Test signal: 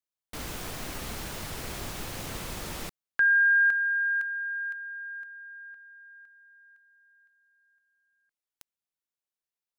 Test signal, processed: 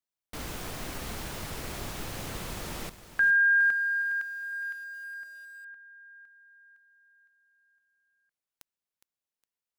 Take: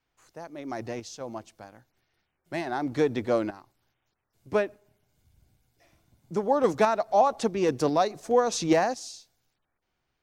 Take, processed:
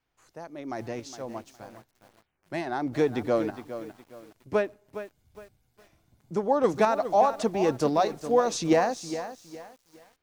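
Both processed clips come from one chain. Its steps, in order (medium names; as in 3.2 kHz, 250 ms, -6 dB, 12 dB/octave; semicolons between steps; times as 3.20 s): treble shelf 2.1 kHz -2 dB; bit-crushed delay 412 ms, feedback 35%, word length 8-bit, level -11.5 dB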